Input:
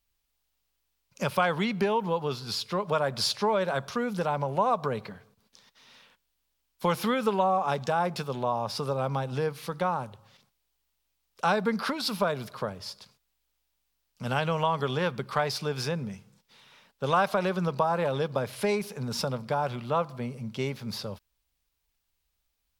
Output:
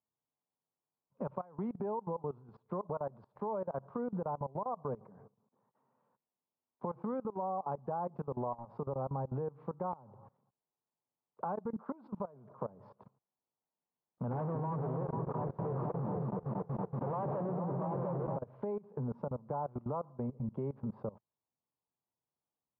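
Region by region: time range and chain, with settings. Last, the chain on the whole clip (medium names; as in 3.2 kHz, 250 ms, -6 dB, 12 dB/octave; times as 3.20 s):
14.31–18.37 s: Schmitt trigger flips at -40.5 dBFS + delay with an opening low-pass 233 ms, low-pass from 400 Hz, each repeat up 2 oct, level 0 dB
whole clip: compression 12:1, threshold -36 dBFS; Chebyshev band-pass 120–1000 Hz, order 3; level held to a coarse grid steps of 21 dB; trim +6.5 dB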